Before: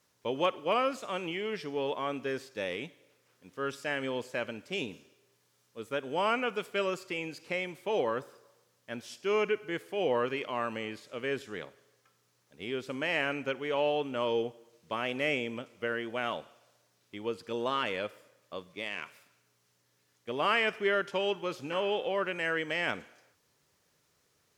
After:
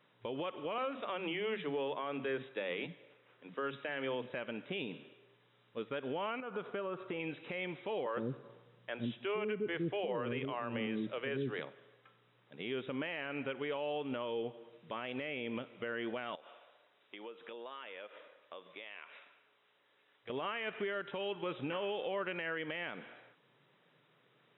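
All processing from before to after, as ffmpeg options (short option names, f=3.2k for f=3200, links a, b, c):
-filter_complex "[0:a]asettb=1/sr,asplit=3[a][b][c];[a]atrim=end=0.784[d];[b]atrim=start=0.78:end=4.3,asetpts=PTS-STARTPTS,afade=t=in:d=0.004:c=qsin,afade=t=out:st=3.516:d=0.004:c=qsin,asoftclip=type=hard:threshold=-23.5dB,highpass=120,lowpass=4.1k,acrossover=split=230[e][f];[e]adelay=40[g];[g][f]amix=inputs=2:normalize=0,atrim=end_sample=155232[h];[c]atrim=start=4.296[i];[d][h]acrossfade=d=0.004:c1=hsin:c2=qsin[j];[j][i]acrossfade=d=0.004:c1=qsin:c2=hsin,asettb=1/sr,asplit=3[k][l][m];[k]atrim=end=6.404[n];[l]atrim=start=6.4:end=7.2,asetpts=PTS-STARTPTS,afade=t=in:d=0.004:c=qsin,afade=t=out:st=0.796:d=0.004:c=qsin,highshelf=f=1.7k:t=q:w=1.5:g=-7,acompressor=threshold=-40dB:ratio=10:attack=3.2:release=140:knee=1:detection=peak[o];[m]atrim=start=7.196[p];[n][o]acrossfade=d=0.004:c1=hsin:c2=qsin[q];[q][p]acrossfade=d=0.004:c1=qsin:c2=hsin,asettb=1/sr,asplit=3[r][s][t];[r]atrim=end=8.064[u];[s]atrim=start=8.06:end=11.6,asetpts=PTS-STARTPTS,afade=t=in:d=0.004:c=qsin,afade=t=out:st=3.536:d=0.004:c=qsin,lowshelf=f=310:g=10.5,acrossover=split=400[v][w];[v]adelay=110[x];[x][w]amix=inputs=2:normalize=0,atrim=end_sample=156114[y];[t]atrim=start=11.596[z];[u][y]acrossfade=d=0.004:c1=hsin:c2=qsin[aa];[aa][z]acrossfade=d=0.004:c1=qsin:c2=hsin,asettb=1/sr,asplit=3[ab][ac][ad];[ab]atrim=end=16.354[ae];[ac]atrim=start=16.35:end=20.3,asetpts=PTS-STARTPTS,afade=t=in:d=0.004:c=qsin,afade=t=out:st=3.946:d=0.004:c=qsin,highpass=420,acompressor=threshold=-50dB:ratio=6:attack=3.2:release=140:knee=1:detection=peak[af];[ad]atrim=start=20.296[ag];[ae][af]acrossfade=d=0.004:c1=hsin:c2=qsin[ah];[ah][ag]acrossfade=d=0.004:c1=qsin:c2=hsin,afftfilt=real='re*between(b*sr/4096,110,3900)':imag='im*between(b*sr/4096,110,3900)':win_size=4096:overlap=0.75,acompressor=threshold=-31dB:ratio=6,alimiter=level_in=9.5dB:limit=-24dB:level=0:latency=1:release=227,volume=-9.5dB,volume=5dB"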